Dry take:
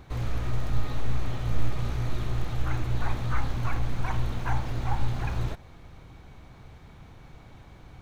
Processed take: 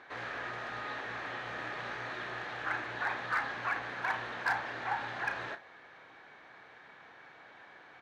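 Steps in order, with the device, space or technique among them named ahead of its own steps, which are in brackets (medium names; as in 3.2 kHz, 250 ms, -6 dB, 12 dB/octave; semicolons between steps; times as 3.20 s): megaphone (band-pass 510–3800 Hz; peaking EQ 1.7 kHz +12 dB 0.37 oct; hard clipper -24 dBFS, distortion -22 dB; doubling 33 ms -10.5 dB)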